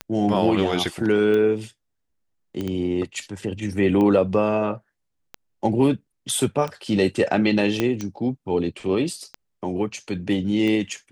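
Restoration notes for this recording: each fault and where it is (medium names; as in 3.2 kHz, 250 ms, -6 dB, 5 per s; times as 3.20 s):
tick 45 rpm -16 dBFS
2.61 s: pop -17 dBFS
7.80 s: pop -8 dBFS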